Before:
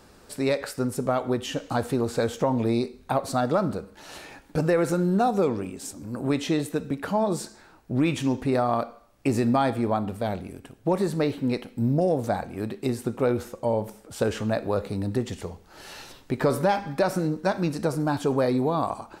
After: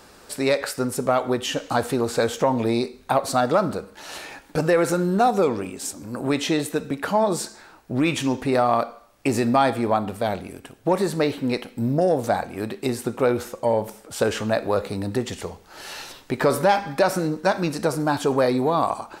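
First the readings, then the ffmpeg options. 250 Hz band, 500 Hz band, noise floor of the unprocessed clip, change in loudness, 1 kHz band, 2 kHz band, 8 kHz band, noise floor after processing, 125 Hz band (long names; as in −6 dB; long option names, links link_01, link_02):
+1.5 dB, +4.0 dB, −53 dBFS, +3.0 dB, +5.0 dB, +6.0 dB, +7.0 dB, −50 dBFS, −0.5 dB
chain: -af "acontrast=75,lowshelf=frequency=340:gain=-8.5"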